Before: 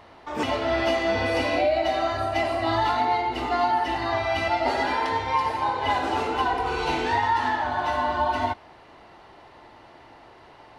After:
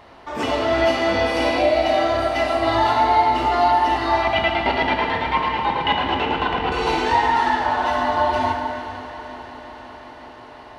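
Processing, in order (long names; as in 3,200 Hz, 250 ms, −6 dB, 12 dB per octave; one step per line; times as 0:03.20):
0:04.22–0:06.72: auto-filter low-pass square 9.1 Hz 210–3,000 Hz
echo machine with several playback heads 180 ms, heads second and third, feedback 72%, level −16 dB
dense smooth reverb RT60 2.3 s, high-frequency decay 0.75×, DRR 2 dB
level +2.5 dB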